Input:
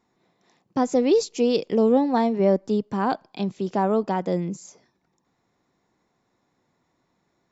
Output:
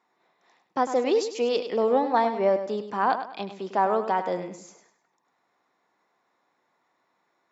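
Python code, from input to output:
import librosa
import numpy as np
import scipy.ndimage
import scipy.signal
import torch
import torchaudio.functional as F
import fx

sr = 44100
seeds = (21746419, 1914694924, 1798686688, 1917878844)

y = scipy.signal.sosfilt(scipy.signal.butter(2, 1100.0, 'highpass', fs=sr, output='sos'), x)
y = fx.tilt_eq(y, sr, slope=-4.5)
y = fx.echo_feedback(y, sr, ms=101, feedback_pct=33, wet_db=-10.0)
y = y * librosa.db_to_amplitude(7.0)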